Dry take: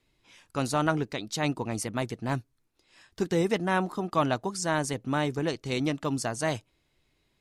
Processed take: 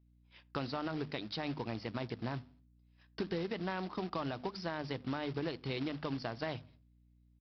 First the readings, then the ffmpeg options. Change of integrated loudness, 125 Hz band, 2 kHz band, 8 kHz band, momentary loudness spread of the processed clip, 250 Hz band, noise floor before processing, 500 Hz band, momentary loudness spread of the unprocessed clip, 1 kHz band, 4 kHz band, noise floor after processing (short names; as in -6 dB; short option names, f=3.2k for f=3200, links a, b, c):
-10.0 dB, -9.5 dB, -10.5 dB, under -30 dB, 4 LU, -9.0 dB, -73 dBFS, -10.0 dB, 7 LU, -11.5 dB, -7.5 dB, -67 dBFS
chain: -filter_complex "[0:a]highpass=f=52:w=0.5412,highpass=f=52:w=1.3066,agate=range=-26dB:threshold=-53dB:ratio=16:detection=peak,bandreject=f=50:t=h:w=6,bandreject=f=100:t=h:w=6,bandreject=f=150:t=h:w=6,bandreject=f=200:t=h:w=6,bandreject=f=250:t=h:w=6,alimiter=limit=-18.5dB:level=0:latency=1:release=63,acompressor=threshold=-39dB:ratio=4,aresample=11025,acrusher=bits=3:mode=log:mix=0:aa=0.000001,aresample=44100,aeval=exprs='val(0)+0.000398*(sin(2*PI*60*n/s)+sin(2*PI*2*60*n/s)/2+sin(2*PI*3*60*n/s)/3+sin(2*PI*4*60*n/s)/4+sin(2*PI*5*60*n/s)/5)':c=same,asplit=2[a][b];[b]adelay=84,lowpass=f=1.3k:p=1,volume=-23.5dB,asplit=2[c][d];[d]adelay=84,lowpass=f=1.3k:p=1,volume=0.39,asplit=2[e][f];[f]adelay=84,lowpass=f=1.3k:p=1,volume=0.39[g];[c][e][g]amix=inputs=3:normalize=0[h];[a][h]amix=inputs=2:normalize=0,volume=2.5dB"